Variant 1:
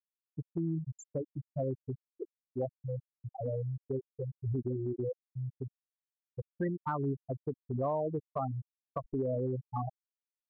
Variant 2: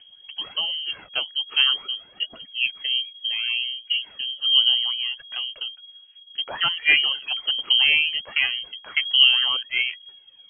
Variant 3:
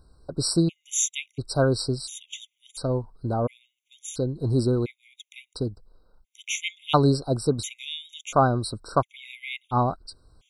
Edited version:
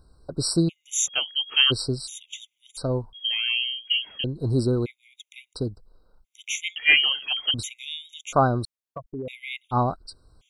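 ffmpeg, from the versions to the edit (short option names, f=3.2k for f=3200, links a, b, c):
-filter_complex "[1:a]asplit=3[a][b][c];[2:a]asplit=5[d][e][f][g][h];[d]atrim=end=1.08[i];[a]atrim=start=1.06:end=1.72[j];[e]atrim=start=1.7:end=3.132[k];[b]atrim=start=3.128:end=4.242[l];[f]atrim=start=4.238:end=6.762[m];[c]atrim=start=6.758:end=7.542[n];[g]atrim=start=7.538:end=8.652[o];[0:a]atrim=start=8.648:end=9.282[p];[h]atrim=start=9.278[q];[i][j]acrossfade=d=0.02:c1=tri:c2=tri[r];[r][k]acrossfade=d=0.02:c1=tri:c2=tri[s];[s][l]acrossfade=d=0.004:c1=hsin:c2=hsin[t];[t][m]acrossfade=d=0.004:c1=hsin:c2=hsin[u];[u][n]acrossfade=d=0.004:c1=hsin:c2=hsin[v];[v][o]acrossfade=d=0.004:c1=hsin:c2=hsin[w];[w][p]acrossfade=d=0.004:c1=hsin:c2=hsin[x];[x][q]acrossfade=d=0.004:c1=hsin:c2=hsin"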